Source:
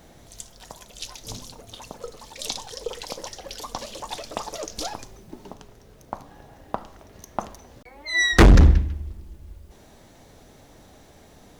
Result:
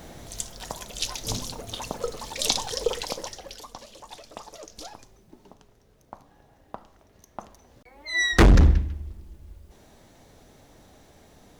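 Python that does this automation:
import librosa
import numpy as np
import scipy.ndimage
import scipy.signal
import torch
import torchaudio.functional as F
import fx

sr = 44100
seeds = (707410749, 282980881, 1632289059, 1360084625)

y = fx.gain(x, sr, db=fx.line((2.85, 6.5), (3.45, -3.0), (3.77, -10.0), (7.43, -10.0), (8.12, -3.0)))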